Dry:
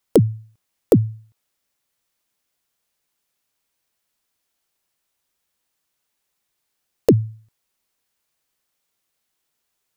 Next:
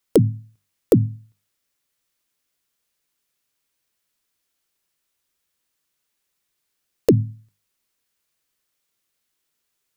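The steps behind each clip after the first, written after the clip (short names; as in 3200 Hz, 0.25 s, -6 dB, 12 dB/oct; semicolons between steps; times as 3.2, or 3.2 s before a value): bell 770 Hz -5 dB 0.87 oct; notches 50/100/150/200/250 Hz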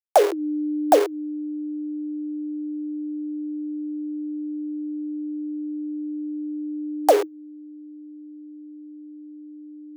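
level-crossing sampler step -19 dBFS; frequency shift +300 Hz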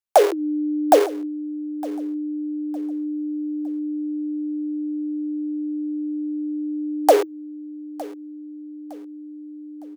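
feedback echo 0.91 s, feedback 35%, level -20 dB; gain +2 dB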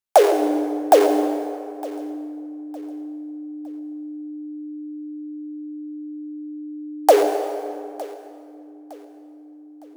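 reverb RT60 2.3 s, pre-delay 78 ms, DRR 6.5 dB; gain +1 dB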